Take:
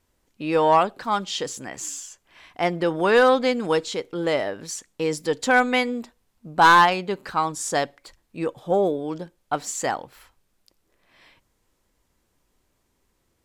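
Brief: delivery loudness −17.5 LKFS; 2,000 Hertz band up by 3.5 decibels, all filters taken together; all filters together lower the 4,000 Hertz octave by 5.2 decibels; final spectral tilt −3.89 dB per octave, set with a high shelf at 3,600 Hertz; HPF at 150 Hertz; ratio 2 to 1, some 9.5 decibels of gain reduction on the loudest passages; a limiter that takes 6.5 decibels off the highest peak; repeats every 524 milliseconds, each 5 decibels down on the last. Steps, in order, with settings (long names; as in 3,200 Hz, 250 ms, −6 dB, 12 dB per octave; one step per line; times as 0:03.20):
high-pass filter 150 Hz
parametric band 2,000 Hz +7.5 dB
high-shelf EQ 3,600 Hz −4.5 dB
parametric band 4,000 Hz −7.5 dB
downward compressor 2 to 1, threshold −26 dBFS
brickwall limiter −17 dBFS
repeating echo 524 ms, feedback 56%, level −5 dB
level +11 dB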